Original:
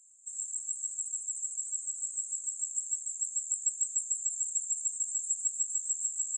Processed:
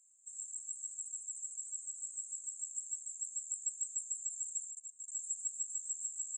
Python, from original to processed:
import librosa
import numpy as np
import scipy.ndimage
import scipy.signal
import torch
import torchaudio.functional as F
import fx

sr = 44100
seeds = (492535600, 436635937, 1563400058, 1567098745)

y = fx.level_steps(x, sr, step_db=19, at=(4.7, 5.12))
y = y * librosa.db_to_amplitude(-7.5)